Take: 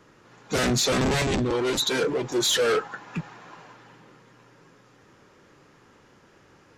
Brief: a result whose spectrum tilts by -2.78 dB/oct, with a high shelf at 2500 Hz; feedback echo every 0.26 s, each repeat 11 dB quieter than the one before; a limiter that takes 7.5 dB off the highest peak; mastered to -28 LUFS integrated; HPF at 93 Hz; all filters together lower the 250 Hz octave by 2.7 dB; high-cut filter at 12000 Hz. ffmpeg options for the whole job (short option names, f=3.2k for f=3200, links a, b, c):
-af "highpass=93,lowpass=12k,equalizer=f=250:t=o:g=-3.5,highshelf=f=2.5k:g=5.5,alimiter=limit=-18.5dB:level=0:latency=1,aecho=1:1:260|520|780:0.282|0.0789|0.0221,volume=-1dB"